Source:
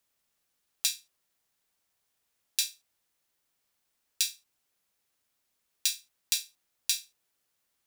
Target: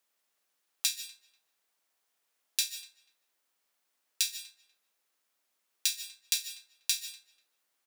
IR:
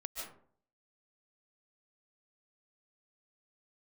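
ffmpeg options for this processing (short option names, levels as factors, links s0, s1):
-filter_complex "[0:a]highpass=260,equalizer=f=1200:w=0.5:g=2.5,asplit=2[s0][s1];[s1]adelay=244,lowpass=f=2300:p=1,volume=0.126,asplit=2[s2][s3];[s3]adelay=244,lowpass=f=2300:p=1,volume=0.23[s4];[s0][s2][s4]amix=inputs=3:normalize=0,asplit=2[s5][s6];[1:a]atrim=start_sample=2205[s7];[s6][s7]afir=irnorm=-1:irlink=0,volume=0.562[s8];[s5][s8]amix=inputs=2:normalize=0,volume=0.631"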